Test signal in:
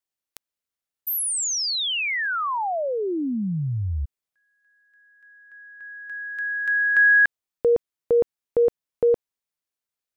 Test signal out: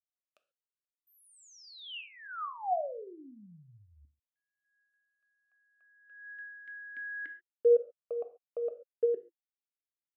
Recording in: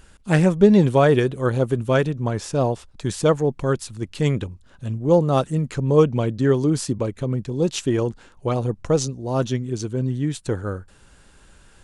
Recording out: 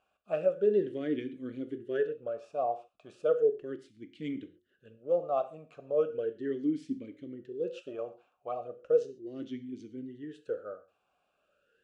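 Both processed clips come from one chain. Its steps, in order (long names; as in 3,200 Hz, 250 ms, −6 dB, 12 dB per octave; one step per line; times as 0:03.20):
dynamic equaliser 640 Hz, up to +5 dB, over −33 dBFS, Q 0.9
reverb whose tail is shaped and stops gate 160 ms falling, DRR 8.5 dB
formant filter swept between two vowels a-i 0.36 Hz
level −7 dB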